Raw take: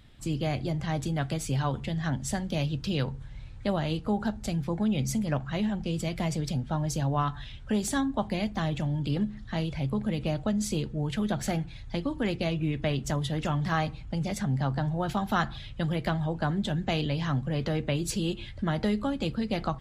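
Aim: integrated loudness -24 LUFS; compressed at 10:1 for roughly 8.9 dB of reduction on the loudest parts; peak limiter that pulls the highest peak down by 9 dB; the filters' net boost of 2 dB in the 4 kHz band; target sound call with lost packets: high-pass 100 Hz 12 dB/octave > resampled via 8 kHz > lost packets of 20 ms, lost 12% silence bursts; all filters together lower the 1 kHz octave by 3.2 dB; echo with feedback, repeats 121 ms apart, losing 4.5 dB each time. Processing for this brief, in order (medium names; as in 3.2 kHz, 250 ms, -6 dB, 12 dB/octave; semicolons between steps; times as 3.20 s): peaking EQ 1 kHz -4.5 dB; peaking EQ 4 kHz +3 dB; compression 10:1, threshold -33 dBFS; peak limiter -28.5 dBFS; high-pass 100 Hz 12 dB/octave; feedback delay 121 ms, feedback 60%, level -4.5 dB; resampled via 8 kHz; lost packets of 20 ms, lost 12% silence bursts; trim +14.5 dB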